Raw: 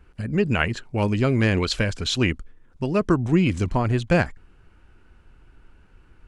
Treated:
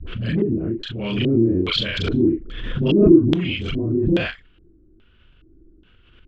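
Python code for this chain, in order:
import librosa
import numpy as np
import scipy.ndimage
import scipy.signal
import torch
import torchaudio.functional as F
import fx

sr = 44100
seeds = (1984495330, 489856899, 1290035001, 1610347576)

p1 = fx.frame_reverse(x, sr, frame_ms=88.0)
p2 = fx.peak_eq(p1, sr, hz=850.0, db=-13.5, octaves=0.29)
p3 = fx.dispersion(p2, sr, late='highs', ms=73.0, hz=590.0)
p4 = 10.0 ** (-25.0 / 20.0) * np.tanh(p3 / 10.0 ** (-25.0 / 20.0))
p5 = p3 + F.gain(torch.from_numpy(p4), -8.0).numpy()
p6 = fx.filter_lfo_lowpass(p5, sr, shape='square', hz=1.2, low_hz=330.0, high_hz=3300.0, q=7.8)
p7 = fx.pre_swell(p6, sr, db_per_s=38.0)
y = F.gain(torch.from_numpy(p7), -3.5).numpy()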